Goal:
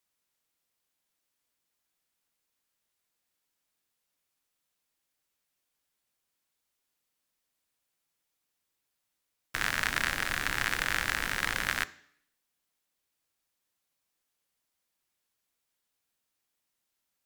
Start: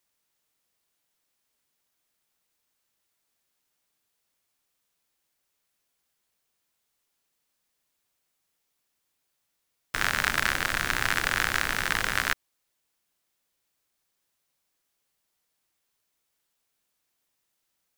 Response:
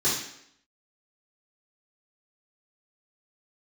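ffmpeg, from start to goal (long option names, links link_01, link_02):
-filter_complex "[0:a]asplit=2[link_01][link_02];[1:a]atrim=start_sample=2205[link_03];[link_02][link_03]afir=irnorm=-1:irlink=0,volume=-28.5dB[link_04];[link_01][link_04]amix=inputs=2:normalize=0,asetrate=45938,aresample=44100,bandreject=frequency=85.06:width_type=h:width=4,bandreject=frequency=170.12:width_type=h:width=4,bandreject=frequency=255.18:width_type=h:width=4,bandreject=frequency=340.24:width_type=h:width=4,bandreject=frequency=425.3:width_type=h:width=4,bandreject=frequency=510.36:width_type=h:width=4,bandreject=frequency=595.42:width_type=h:width=4,bandreject=frequency=680.48:width_type=h:width=4,bandreject=frequency=765.54:width_type=h:width=4,volume=-4dB"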